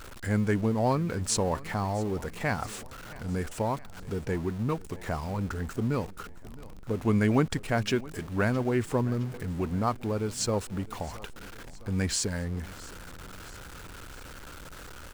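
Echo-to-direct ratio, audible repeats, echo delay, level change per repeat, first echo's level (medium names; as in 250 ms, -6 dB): -18.5 dB, 3, 665 ms, -5.0 dB, -20.0 dB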